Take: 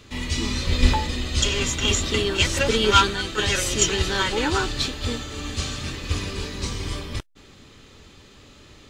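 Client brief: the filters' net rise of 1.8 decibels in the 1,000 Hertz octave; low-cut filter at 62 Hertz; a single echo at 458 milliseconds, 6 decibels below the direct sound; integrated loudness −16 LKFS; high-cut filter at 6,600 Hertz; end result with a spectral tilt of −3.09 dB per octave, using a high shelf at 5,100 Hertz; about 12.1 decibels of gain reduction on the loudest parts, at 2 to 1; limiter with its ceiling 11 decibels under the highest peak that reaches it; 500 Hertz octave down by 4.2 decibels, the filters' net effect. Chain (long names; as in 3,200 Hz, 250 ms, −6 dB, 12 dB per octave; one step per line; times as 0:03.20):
high-pass filter 62 Hz
low-pass filter 6,600 Hz
parametric band 500 Hz −6 dB
parametric band 1,000 Hz +3.5 dB
high-shelf EQ 5,100 Hz +3.5 dB
downward compressor 2 to 1, threshold −32 dBFS
brickwall limiter −23.5 dBFS
single-tap delay 458 ms −6 dB
level +16 dB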